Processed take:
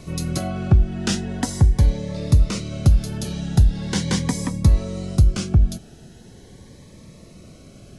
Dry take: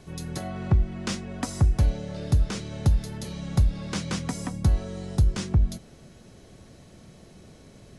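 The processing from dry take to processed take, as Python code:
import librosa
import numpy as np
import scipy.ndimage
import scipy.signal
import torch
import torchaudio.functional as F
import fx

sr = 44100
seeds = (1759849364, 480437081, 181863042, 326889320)

p1 = fx.rider(x, sr, range_db=5, speed_s=0.5)
p2 = x + (p1 * librosa.db_to_amplitude(1.0))
y = fx.notch_cascade(p2, sr, direction='rising', hz=0.41)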